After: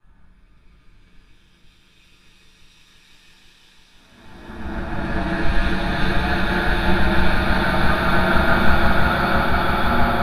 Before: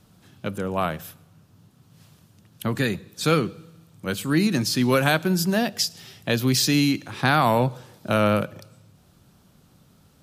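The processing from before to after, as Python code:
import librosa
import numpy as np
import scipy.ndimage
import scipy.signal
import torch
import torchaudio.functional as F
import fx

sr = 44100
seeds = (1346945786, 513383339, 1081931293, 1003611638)

y = fx.octave_divider(x, sr, octaves=2, level_db=-4.0)
y = fx.paulstretch(y, sr, seeds[0], factor=37.0, window_s=0.05, from_s=7.11)
y = y * np.sin(2.0 * np.pi * 71.0 * np.arange(len(y)) / sr)
y = fx.echo_swell(y, sr, ms=167, loudest=8, wet_db=-12.0)
y = fx.room_shoebox(y, sr, seeds[1], volume_m3=120.0, walls='furnished', distance_m=2.7)
y = fx.band_widen(y, sr, depth_pct=100)
y = y * 10.0 ** (-8.5 / 20.0)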